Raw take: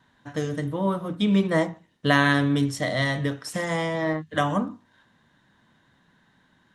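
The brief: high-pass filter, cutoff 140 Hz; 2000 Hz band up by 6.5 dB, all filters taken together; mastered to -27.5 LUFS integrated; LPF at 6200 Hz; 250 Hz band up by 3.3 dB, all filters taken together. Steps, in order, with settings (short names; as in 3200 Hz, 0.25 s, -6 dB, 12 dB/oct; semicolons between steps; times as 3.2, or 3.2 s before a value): HPF 140 Hz; LPF 6200 Hz; bell 250 Hz +5 dB; bell 2000 Hz +7.5 dB; gain -6 dB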